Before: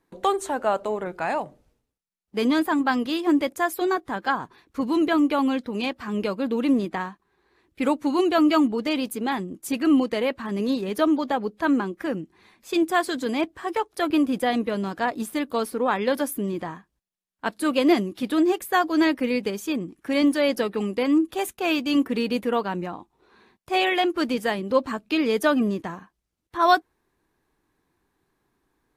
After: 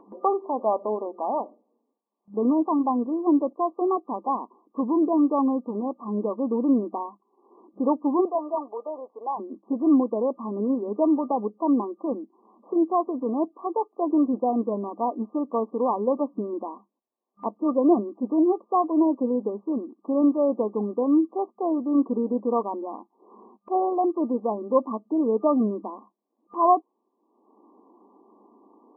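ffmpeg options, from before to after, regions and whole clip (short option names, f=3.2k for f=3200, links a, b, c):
-filter_complex "[0:a]asettb=1/sr,asplit=3[a][b][c];[a]atrim=end=8.254[d];[b]atrim=start=8.25:end=9.4,asetpts=PTS-STARTPTS,afade=t=in:d=0.004:c=qsin,afade=t=out:st=1.146:d=0.004:c=qsin,highpass=f=520:w=0.5412,highpass=f=520:w=1.3066,aeval=exprs='0.168*(abs(mod(val(0)/0.168+3,4)-2)-1)':c=same[e];[c]atrim=start=9.396[f];[d][e]acrossfade=d=0.004:c1=hsin:c2=qsin[g];[g][f]acrossfade=d=0.004:c1=qsin:c2=hsin,afftfilt=real='re*between(b*sr/4096,200,1200)':imag='im*between(b*sr/4096,200,1200)':win_size=4096:overlap=0.75,acompressor=mode=upward:threshold=-39dB:ratio=2.5"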